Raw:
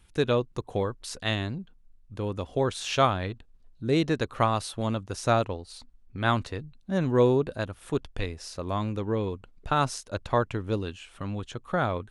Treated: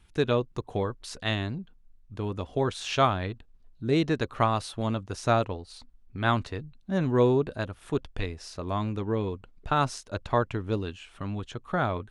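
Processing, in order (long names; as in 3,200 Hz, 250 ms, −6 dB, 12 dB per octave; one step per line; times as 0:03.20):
high-shelf EQ 8,700 Hz −9 dB
notch filter 520 Hz, Q 12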